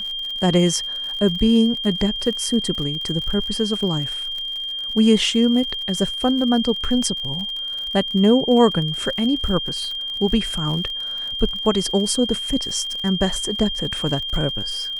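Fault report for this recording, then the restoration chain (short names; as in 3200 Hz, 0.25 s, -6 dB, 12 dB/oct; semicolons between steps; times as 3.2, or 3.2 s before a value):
crackle 58/s -28 dBFS
tone 3200 Hz -25 dBFS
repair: de-click; notch 3200 Hz, Q 30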